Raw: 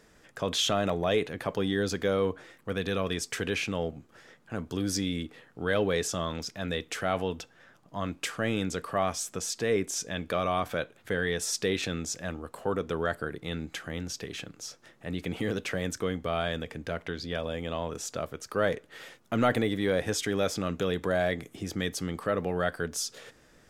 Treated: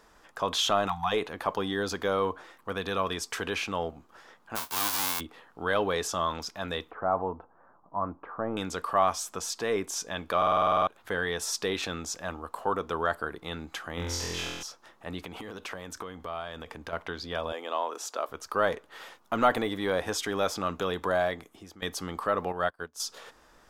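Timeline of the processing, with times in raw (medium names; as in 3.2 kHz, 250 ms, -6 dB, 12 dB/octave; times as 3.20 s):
0.88–1.12 s: spectral selection erased 240–690 Hz
4.55–5.19 s: formants flattened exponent 0.1
6.91–8.57 s: low-pass 1.2 kHz 24 dB/octave
10.37 s: stutter in place 0.05 s, 10 plays
13.95–14.63 s: flutter echo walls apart 4 m, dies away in 1.2 s
15.25–16.93 s: compression, threshold -34 dBFS
17.52–18.29 s: high-pass 300 Hz 24 dB/octave
21.15–21.82 s: fade out, to -18 dB
22.52–23.00 s: upward expansion 2.5:1, over -44 dBFS
whole clip: graphic EQ 125/250/500/1000/2000/8000 Hz -12/-3/-4/+9/-5/-4 dB; trim +2 dB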